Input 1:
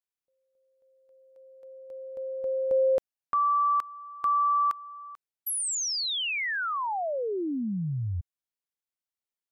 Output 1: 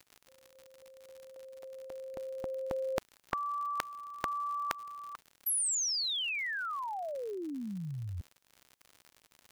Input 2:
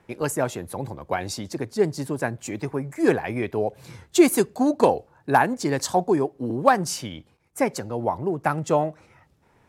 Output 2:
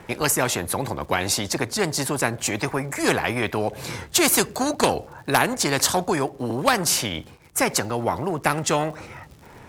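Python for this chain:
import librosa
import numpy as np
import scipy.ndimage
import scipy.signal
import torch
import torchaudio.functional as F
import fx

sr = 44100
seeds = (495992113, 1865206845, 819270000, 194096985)

y = fx.dmg_crackle(x, sr, seeds[0], per_s=88.0, level_db=-53.0)
y = fx.spectral_comp(y, sr, ratio=2.0)
y = y * 10.0 ** (3.5 / 20.0)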